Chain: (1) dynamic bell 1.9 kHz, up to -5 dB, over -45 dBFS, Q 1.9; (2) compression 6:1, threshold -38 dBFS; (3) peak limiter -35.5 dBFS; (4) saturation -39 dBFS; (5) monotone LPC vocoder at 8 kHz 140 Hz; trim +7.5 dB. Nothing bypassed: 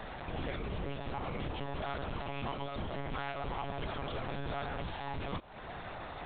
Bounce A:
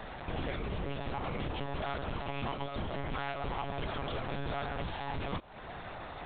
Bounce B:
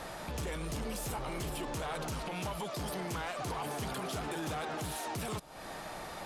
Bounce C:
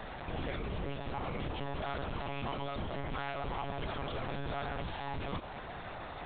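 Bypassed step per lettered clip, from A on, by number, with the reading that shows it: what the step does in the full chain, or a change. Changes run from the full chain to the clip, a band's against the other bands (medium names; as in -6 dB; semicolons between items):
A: 3, mean gain reduction 2.5 dB; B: 5, 4 kHz band +2.0 dB; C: 2, mean gain reduction 11.0 dB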